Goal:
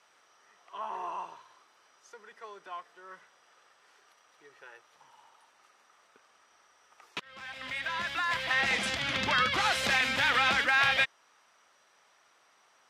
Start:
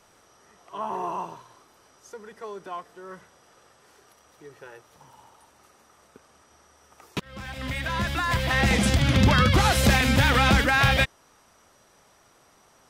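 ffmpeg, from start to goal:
-af "bandpass=f=2.2k:t=q:w=0.63:csg=0,volume=-2dB"

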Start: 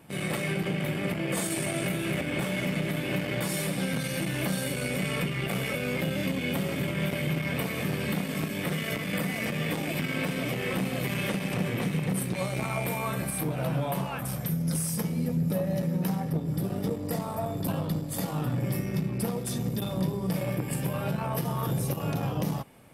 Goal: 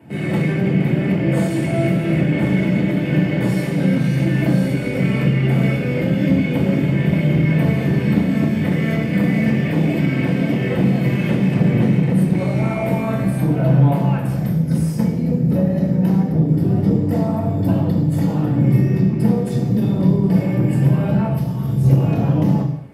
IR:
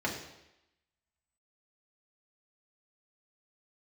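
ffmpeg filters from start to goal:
-filter_complex "[0:a]lowshelf=f=490:g=10,asettb=1/sr,asplit=3[a][b][c];[a]atrim=end=21.274[d];[b]atrim=start=21.27:end=21.84,asetpts=PTS-STARTPTS,afade=t=in:d=0.004:c=qsin,afade=t=out:st=0.566:d=0.004:c=qsin,acrossover=split=180|3000[e][f][g];[f]acompressor=threshold=-35dB:ratio=6[h];[e][h][g]amix=inputs=3:normalize=0[i];[c]atrim=start=21.836[j];[d][i]acrossfade=d=0.004:c1=hsin:c2=qsin[k];[k][j]acrossfade=d=0.004:c1=qsin:c2=hsin[l];[1:a]atrim=start_sample=2205,afade=t=out:st=0.31:d=0.01,atrim=end_sample=14112[m];[l][m]afir=irnorm=-1:irlink=0,volume=-4dB"

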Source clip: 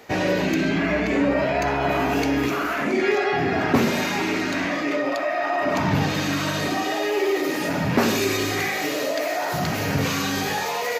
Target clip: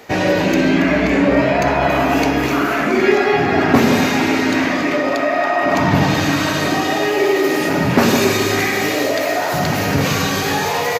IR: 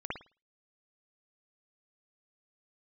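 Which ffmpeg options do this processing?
-filter_complex "[0:a]aecho=1:1:279|558|837|1116|1395|1674:0.282|0.158|0.0884|0.0495|0.0277|0.0155,asplit=2[a][b];[1:a]atrim=start_sample=2205,lowpass=1.5k,adelay=107[c];[b][c]afir=irnorm=-1:irlink=0,volume=-9dB[d];[a][d]amix=inputs=2:normalize=0,volume=5.5dB"

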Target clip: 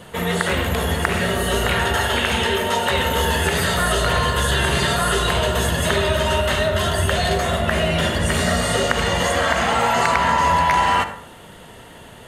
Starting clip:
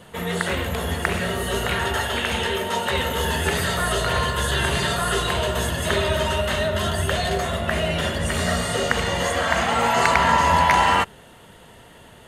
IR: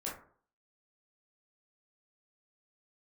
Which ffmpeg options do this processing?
-filter_complex "[0:a]acompressor=threshold=-20dB:ratio=6,asplit=2[a][b];[1:a]atrim=start_sample=2205,adelay=55[c];[b][c]afir=irnorm=-1:irlink=0,volume=-11dB[d];[a][d]amix=inputs=2:normalize=0,volume=5dB"

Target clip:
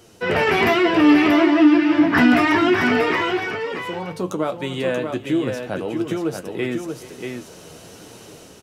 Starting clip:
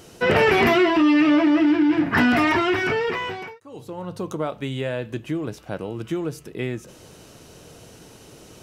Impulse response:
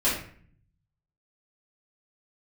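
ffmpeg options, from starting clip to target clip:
-filter_complex "[0:a]acrossover=split=150[a][b];[b]dynaudnorm=f=150:g=5:m=8dB[c];[a][c]amix=inputs=2:normalize=0,flanger=delay=8.2:depth=4.5:regen=43:speed=1.1:shape=triangular,aecho=1:1:427|634:0.106|0.501"

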